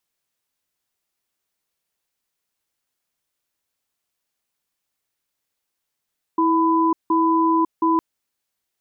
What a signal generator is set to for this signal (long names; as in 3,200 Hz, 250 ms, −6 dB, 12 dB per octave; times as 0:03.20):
tone pair in a cadence 326 Hz, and 1,000 Hz, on 0.55 s, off 0.17 s, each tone −17.5 dBFS 1.61 s